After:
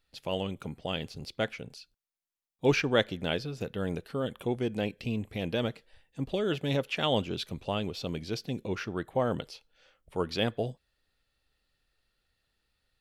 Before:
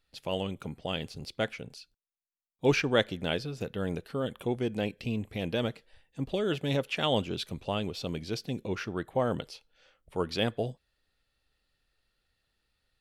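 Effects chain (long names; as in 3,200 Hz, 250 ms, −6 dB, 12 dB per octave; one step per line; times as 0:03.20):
dynamic equaliser 9,000 Hz, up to −4 dB, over −58 dBFS, Q 2.1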